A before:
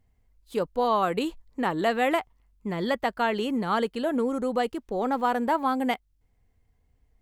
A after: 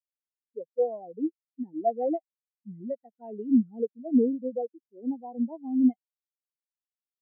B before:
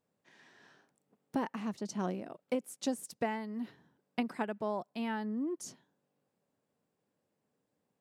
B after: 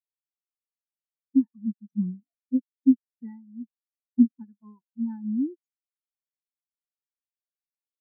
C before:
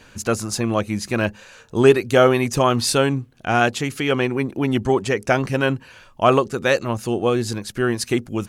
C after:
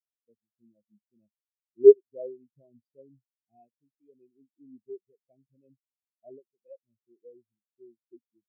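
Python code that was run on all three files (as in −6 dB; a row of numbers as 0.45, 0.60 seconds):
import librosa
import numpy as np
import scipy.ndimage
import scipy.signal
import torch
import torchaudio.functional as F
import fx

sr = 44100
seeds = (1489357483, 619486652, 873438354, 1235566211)

y = scipy.signal.sosfilt(scipy.signal.butter(2, 100.0, 'highpass', fs=sr, output='sos'), x)
y = fx.env_phaser(y, sr, low_hz=350.0, high_hz=1300.0, full_db=-23.0)
y = fx.spectral_expand(y, sr, expansion=4.0)
y = y * 10.0 ** (-30 / 20.0) / np.sqrt(np.mean(np.square(y)))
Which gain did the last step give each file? +2.5, +16.5, −0.5 decibels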